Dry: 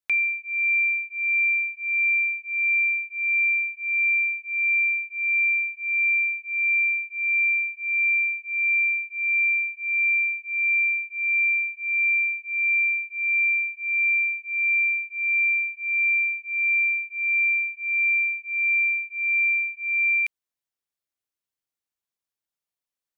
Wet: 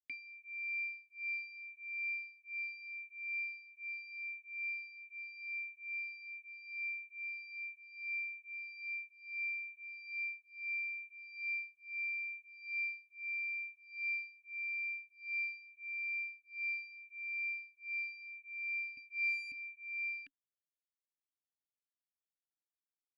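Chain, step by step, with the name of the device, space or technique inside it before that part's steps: 18.97–19.52 s: tilt EQ +5.5 dB/octave; talk box (valve stage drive 17 dB, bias 0.8; talking filter i-u 0.78 Hz); trim -3 dB

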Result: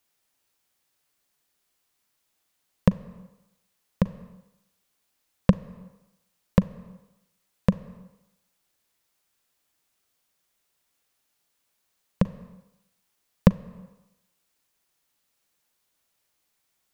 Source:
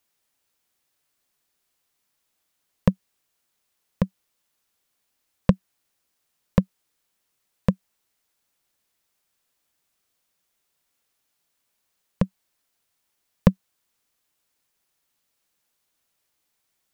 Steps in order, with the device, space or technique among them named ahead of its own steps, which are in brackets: compressed reverb return (on a send at -9 dB: reverberation RT60 0.85 s, pre-delay 38 ms + compression 6:1, threshold -28 dBFS, peak gain reduction 12.5 dB)

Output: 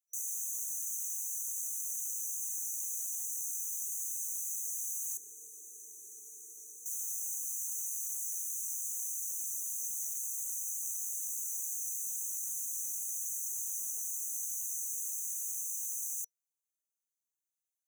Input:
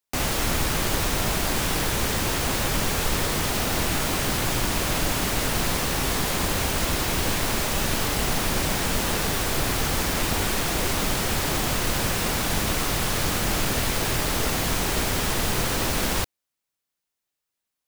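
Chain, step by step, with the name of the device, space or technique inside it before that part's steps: 5.17–6.86 s: tilt EQ -4 dB/octave; FFT band-reject 480–5900 Hz; headphones lying on a table (high-pass 1.1 kHz 24 dB/octave; peaking EQ 5.7 kHz +6 dB 0.52 oct); trim -7 dB

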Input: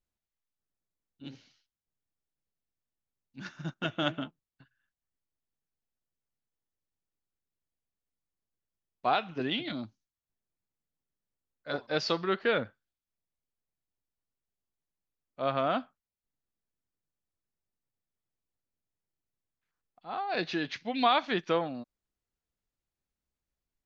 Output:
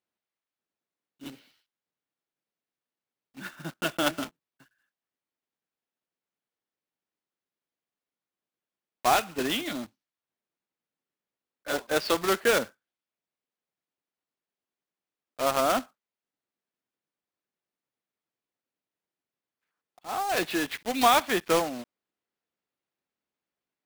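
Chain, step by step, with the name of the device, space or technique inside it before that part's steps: early digital voice recorder (band-pass 240–3600 Hz; block-companded coder 3-bit); trim +4.5 dB

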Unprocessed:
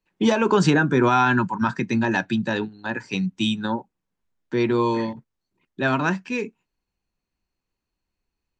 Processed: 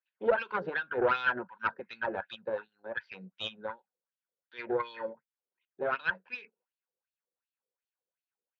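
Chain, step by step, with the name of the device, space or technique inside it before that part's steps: wah-wah guitar rig (wah-wah 2.7 Hz 420–3700 Hz, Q 3.9; valve stage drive 23 dB, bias 0.8; cabinet simulation 94–4200 Hz, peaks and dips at 120 Hz -4 dB, 290 Hz -7 dB, 520 Hz +10 dB, 1.5 kHz +9 dB)

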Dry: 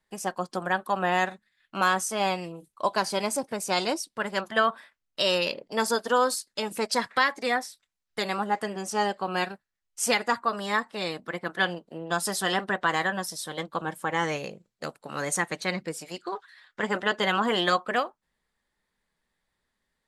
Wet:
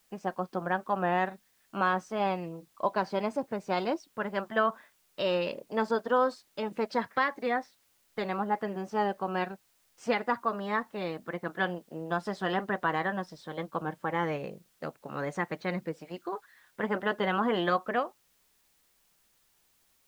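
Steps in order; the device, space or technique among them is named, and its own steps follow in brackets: cassette deck with a dirty head (tape spacing loss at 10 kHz 34 dB; wow and flutter 28 cents; white noise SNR 37 dB)

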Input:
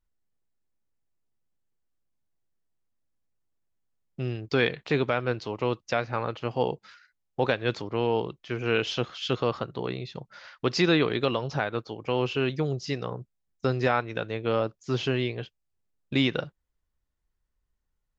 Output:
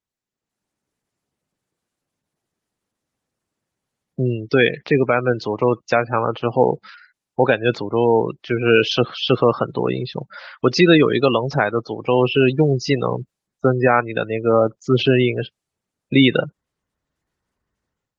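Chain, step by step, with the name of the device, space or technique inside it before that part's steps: noise-suppressed video call (high-pass 120 Hz 12 dB/octave; spectral gate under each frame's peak -20 dB strong; level rider gain up to 14 dB; Opus 20 kbps 48 kHz)

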